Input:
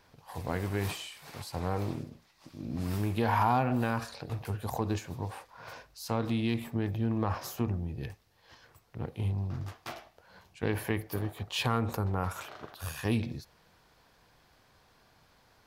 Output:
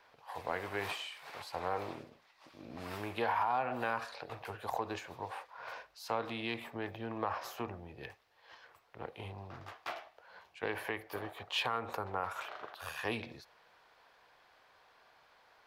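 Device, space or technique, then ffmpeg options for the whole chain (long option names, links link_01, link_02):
DJ mixer with the lows and highs turned down: -filter_complex "[0:a]acrossover=split=440 3800:gain=0.112 1 0.251[link_01][link_02][link_03];[link_01][link_02][link_03]amix=inputs=3:normalize=0,alimiter=level_in=0.5dB:limit=-24dB:level=0:latency=1:release=261,volume=-0.5dB,volume=2dB"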